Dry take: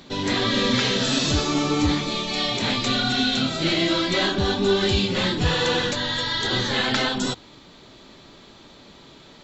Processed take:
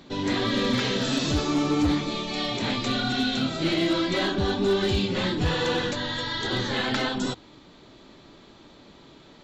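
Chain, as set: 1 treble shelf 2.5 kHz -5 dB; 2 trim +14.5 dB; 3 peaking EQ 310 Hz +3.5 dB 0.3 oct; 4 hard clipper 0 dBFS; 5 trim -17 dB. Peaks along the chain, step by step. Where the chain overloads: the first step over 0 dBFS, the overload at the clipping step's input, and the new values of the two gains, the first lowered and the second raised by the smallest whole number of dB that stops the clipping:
-10.0 dBFS, +4.5 dBFS, +5.5 dBFS, 0.0 dBFS, -17.0 dBFS; step 2, 5.5 dB; step 2 +8.5 dB, step 5 -11 dB

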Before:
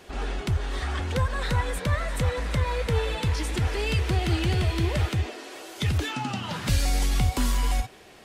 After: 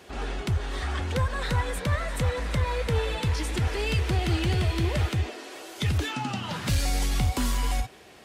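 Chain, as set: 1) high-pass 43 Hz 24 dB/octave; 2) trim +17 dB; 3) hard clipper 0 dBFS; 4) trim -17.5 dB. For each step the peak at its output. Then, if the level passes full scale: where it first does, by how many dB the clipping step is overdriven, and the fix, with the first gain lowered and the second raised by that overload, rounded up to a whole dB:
-11.5 dBFS, +5.5 dBFS, 0.0 dBFS, -17.5 dBFS; step 2, 5.5 dB; step 2 +11 dB, step 4 -11.5 dB

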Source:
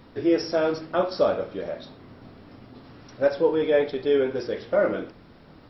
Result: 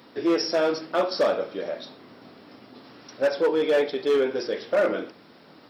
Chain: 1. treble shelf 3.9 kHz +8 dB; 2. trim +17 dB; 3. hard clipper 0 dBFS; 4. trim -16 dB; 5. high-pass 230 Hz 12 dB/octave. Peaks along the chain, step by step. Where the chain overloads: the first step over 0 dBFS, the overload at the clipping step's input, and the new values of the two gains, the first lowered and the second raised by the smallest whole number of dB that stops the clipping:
-8.0 dBFS, +9.0 dBFS, 0.0 dBFS, -16.0 dBFS, -11.5 dBFS; step 2, 9.0 dB; step 2 +8 dB, step 4 -7 dB

